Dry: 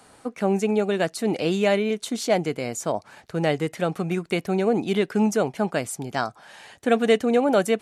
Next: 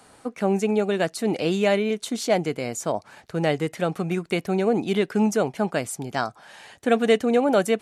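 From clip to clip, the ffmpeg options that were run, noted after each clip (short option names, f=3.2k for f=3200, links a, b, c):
-af anull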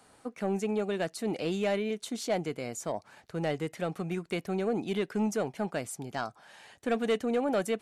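-af "asoftclip=type=tanh:threshold=-12dB,volume=-7.5dB"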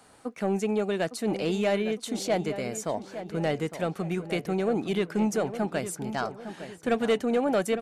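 -filter_complex "[0:a]asplit=2[a][b];[b]adelay=858,lowpass=f=2.4k:p=1,volume=-11dB,asplit=2[c][d];[d]adelay=858,lowpass=f=2.4k:p=1,volume=0.44,asplit=2[e][f];[f]adelay=858,lowpass=f=2.4k:p=1,volume=0.44,asplit=2[g][h];[h]adelay=858,lowpass=f=2.4k:p=1,volume=0.44,asplit=2[i][j];[j]adelay=858,lowpass=f=2.4k:p=1,volume=0.44[k];[a][c][e][g][i][k]amix=inputs=6:normalize=0,volume=3.5dB"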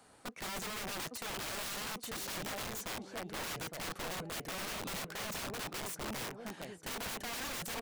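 -af "aeval=exprs='(mod(31.6*val(0)+1,2)-1)/31.6':c=same,volume=-5.5dB"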